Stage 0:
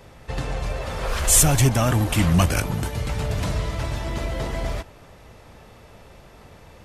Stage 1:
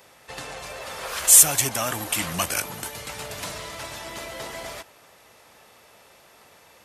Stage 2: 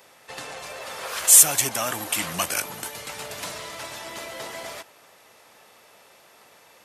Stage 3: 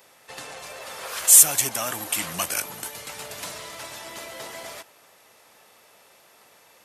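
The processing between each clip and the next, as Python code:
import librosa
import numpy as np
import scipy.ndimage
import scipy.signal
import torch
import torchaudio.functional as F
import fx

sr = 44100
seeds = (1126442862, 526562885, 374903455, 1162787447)

y1 = fx.highpass(x, sr, hz=820.0, slope=6)
y1 = fx.high_shelf(y1, sr, hz=7700.0, db=9.5)
y1 = y1 * librosa.db_to_amplitude(-1.0)
y2 = fx.highpass(y1, sr, hz=190.0, slope=6)
y3 = fx.high_shelf(y2, sr, hz=7200.0, db=4.5)
y3 = y3 * librosa.db_to_amplitude(-2.5)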